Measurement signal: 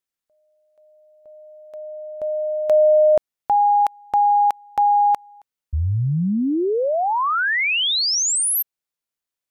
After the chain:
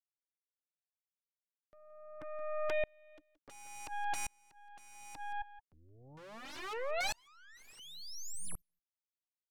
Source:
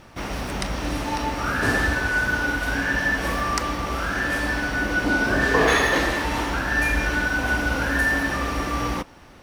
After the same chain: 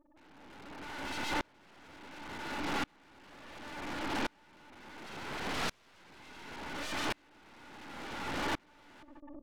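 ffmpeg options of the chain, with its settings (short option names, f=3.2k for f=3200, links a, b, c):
-filter_complex "[0:a]asplit=3[a][b][c];[a]bandpass=f=300:t=q:w=8,volume=0dB[d];[b]bandpass=f=870:t=q:w=8,volume=-6dB[e];[c]bandpass=f=2.24k:t=q:w=8,volume=-9dB[f];[d][e][f]amix=inputs=3:normalize=0,afftfilt=real='re*gte(hypot(re,im),0.00631)':imag='im*gte(hypot(re,im),0.00631)':win_size=1024:overlap=0.75,asplit=2[g][h];[h]acompressor=mode=upward:threshold=-31dB:ratio=4:attack=6.3:release=58:knee=2.83:detection=peak,volume=0dB[i];[g][i]amix=inputs=2:normalize=0,aeval=exprs='(mod(23.7*val(0)+1,2)-1)/23.7':c=same,aeval=exprs='0.0447*(cos(1*acos(clip(val(0)/0.0447,-1,1)))-cos(1*PI/2))+0.0112*(cos(4*acos(clip(val(0)/0.0447,-1,1)))-cos(4*PI/2))+0.0112*(cos(5*acos(clip(val(0)/0.0447,-1,1)))-cos(5*PI/2))+0.0224*(cos(6*acos(clip(val(0)/0.0447,-1,1)))-cos(6*PI/2))':c=same,aemphasis=mode=reproduction:type=50fm,aecho=1:1:173:0.112,aeval=exprs='val(0)*pow(10,-35*if(lt(mod(-0.7*n/s,1),2*abs(-0.7)/1000),1-mod(-0.7*n/s,1)/(2*abs(-0.7)/1000),(mod(-0.7*n/s,1)-2*abs(-0.7)/1000)/(1-2*abs(-0.7)/1000))/20)':c=same"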